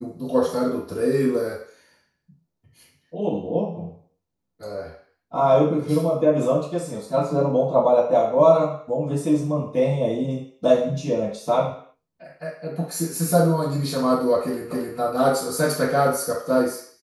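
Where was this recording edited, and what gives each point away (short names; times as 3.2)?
14.71 repeat of the last 0.27 s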